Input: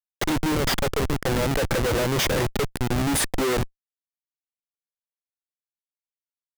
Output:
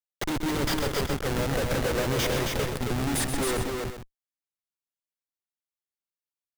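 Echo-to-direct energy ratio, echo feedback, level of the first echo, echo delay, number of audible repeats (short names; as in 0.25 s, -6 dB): -2.5 dB, no steady repeat, -8.5 dB, 0.128 s, 3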